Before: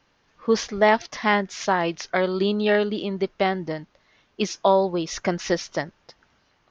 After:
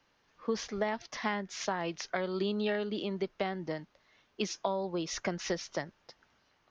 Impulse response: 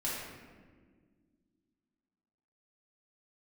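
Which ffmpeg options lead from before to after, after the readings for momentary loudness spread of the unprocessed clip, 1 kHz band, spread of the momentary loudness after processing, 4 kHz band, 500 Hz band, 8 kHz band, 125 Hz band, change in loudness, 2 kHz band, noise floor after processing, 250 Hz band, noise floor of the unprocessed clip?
11 LU, −13.5 dB, 7 LU, −9.0 dB, −12.0 dB, can't be measured, −10.0 dB, −11.5 dB, −12.0 dB, −72 dBFS, −10.0 dB, −66 dBFS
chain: -filter_complex "[0:a]lowshelf=frequency=230:gain=-4,acrossover=split=180[link_01][link_02];[link_02]acompressor=threshold=-24dB:ratio=6[link_03];[link_01][link_03]amix=inputs=2:normalize=0,volume=-5.5dB"

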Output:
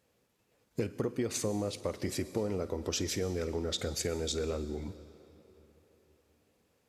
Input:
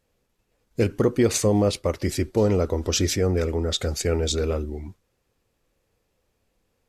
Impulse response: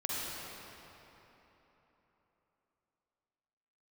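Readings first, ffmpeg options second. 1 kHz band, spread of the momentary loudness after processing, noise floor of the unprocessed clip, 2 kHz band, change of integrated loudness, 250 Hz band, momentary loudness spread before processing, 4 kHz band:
−11.0 dB, 6 LU, −73 dBFS, −10.0 dB, −11.5 dB, −11.0 dB, 8 LU, −9.0 dB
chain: -filter_complex "[0:a]highpass=100,acompressor=threshold=-32dB:ratio=4,asplit=2[link_01][link_02];[1:a]atrim=start_sample=2205,highshelf=frequency=5100:gain=8,adelay=52[link_03];[link_02][link_03]afir=irnorm=-1:irlink=0,volume=-20.5dB[link_04];[link_01][link_04]amix=inputs=2:normalize=0"

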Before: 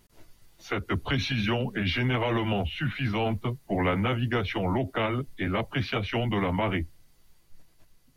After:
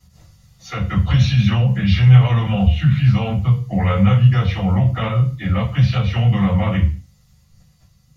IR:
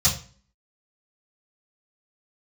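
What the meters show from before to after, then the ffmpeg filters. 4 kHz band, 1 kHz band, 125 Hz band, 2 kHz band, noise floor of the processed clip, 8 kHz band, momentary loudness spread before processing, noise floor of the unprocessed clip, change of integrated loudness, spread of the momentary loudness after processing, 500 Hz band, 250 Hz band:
+4.0 dB, +4.0 dB, +17.0 dB, +2.0 dB, −55 dBFS, can't be measured, 5 LU, −61 dBFS, +12.0 dB, 8 LU, +1.5 dB, +9.5 dB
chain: -filter_complex "[1:a]atrim=start_sample=2205,afade=type=out:start_time=0.31:duration=0.01,atrim=end_sample=14112[link_01];[0:a][link_01]afir=irnorm=-1:irlink=0,volume=-9.5dB"

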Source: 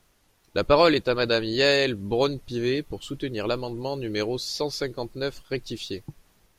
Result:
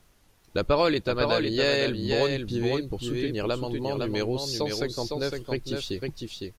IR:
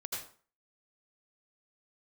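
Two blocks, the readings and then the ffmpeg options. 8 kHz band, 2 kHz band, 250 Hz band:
−0.5 dB, −3.0 dB, −0.5 dB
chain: -af "lowshelf=frequency=200:gain=4.5,aecho=1:1:508:0.531,acompressor=threshold=-30dB:ratio=1.5,volume=1dB"

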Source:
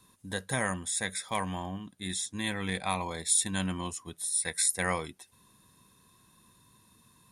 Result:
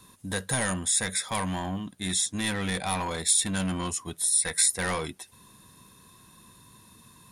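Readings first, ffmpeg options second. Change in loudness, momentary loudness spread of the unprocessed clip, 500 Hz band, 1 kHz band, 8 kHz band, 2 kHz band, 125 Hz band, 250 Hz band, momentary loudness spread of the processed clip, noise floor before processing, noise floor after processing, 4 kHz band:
+4.5 dB, 12 LU, +2.5 dB, +2.0 dB, +5.0 dB, +2.0 dB, +4.0 dB, +4.0 dB, 11 LU, −64 dBFS, −56 dBFS, +5.5 dB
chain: -filter_complex "[0:a]acrossover=split=4900[link_01][link_02];[link_01]asoftclip=type=tanh:threshold=-33dB[link_03];[link_02]alimiter=limit=-20.5dB:level=0:latency=1:release=434[link_04];[link_03][link_04]amix=inputs=2:normalize=0,volume=8dB"

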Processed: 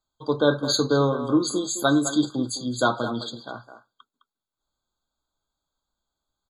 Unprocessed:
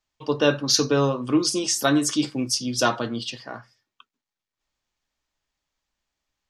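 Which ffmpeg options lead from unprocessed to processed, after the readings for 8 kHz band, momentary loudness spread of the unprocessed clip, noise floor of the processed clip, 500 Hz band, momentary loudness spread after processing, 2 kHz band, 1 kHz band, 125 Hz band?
−5.0 dB, 13 LU, below −85 dBFS, +0.5 dB, 12 LU, −1.0 dB, +0.5 dB, 0.0 dB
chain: -filter_complex "[0:a]asplit=2[link_01][link_02];[link_02]adelay=210,highpass=300,lowpass=3400,asoftclip=type=hard:threshold=-14dB,volume=-10dB[link_03];[link_01][link_03]amix=inputs=2:normalize=0,afftfilt=real='re*eq(mod(floor(b*sr/1024/1600),2),0)':imag='im*eq(mod(floor(b*sr/1024/1600),2),0)':win_size=1024:overlap=0.75"

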